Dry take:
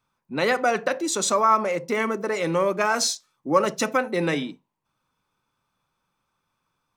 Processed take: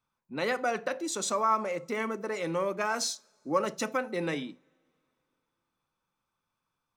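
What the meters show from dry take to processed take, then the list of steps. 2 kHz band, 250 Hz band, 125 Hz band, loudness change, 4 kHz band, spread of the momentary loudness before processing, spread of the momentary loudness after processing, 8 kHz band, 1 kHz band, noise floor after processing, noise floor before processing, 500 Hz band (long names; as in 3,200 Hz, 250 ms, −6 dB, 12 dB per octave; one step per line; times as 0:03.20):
−8.0 dB, −7.5 dB, −8.5 dB, −8.0 dB, −8.0 dB, 6 LU, 6 LU, −8.0 dB, −7.5 dB, −85 dBFS, −78 dBFS, −8.0 dB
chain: coupled-rooms reverb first 0.32 s, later 2.8 s, from −22 dB, DRR 19.5 dB
level −8 dB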